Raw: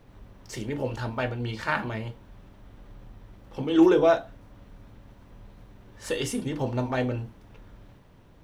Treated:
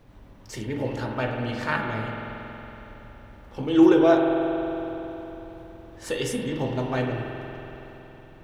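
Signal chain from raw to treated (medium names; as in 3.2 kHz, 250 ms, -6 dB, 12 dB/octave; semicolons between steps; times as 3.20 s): spring tank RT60 3.7 s, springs 46 ms, chirp 55 ms, DRR 1.5 dB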